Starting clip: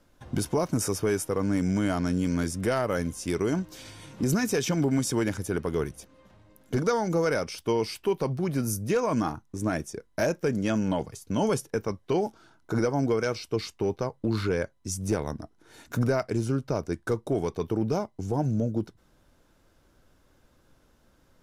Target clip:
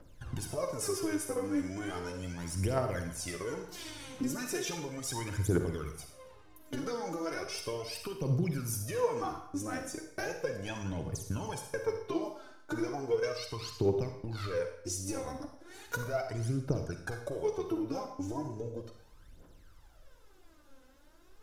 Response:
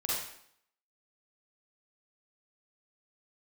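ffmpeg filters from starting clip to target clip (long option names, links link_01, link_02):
-filter_complex "[0:a]equalizer=frequency=210:width_type=o:width=0.31:gain=-8,acompressor=threshold=-32dB:ratio=6,aphaser=in_gain=1:out_gain=1:delay=4:decay=0.79:speed=0.36:type=triangular,asplit=2[link_01][link_02];[1:a]atrim=start_sample=2205[link_03];[link_02][link_03]afir=irnorm=-1:irlink=0,volume=-7.5dB[link_04];[link_01][link_04]amix=inputs=2:normalize=0,volume=-6.5dB"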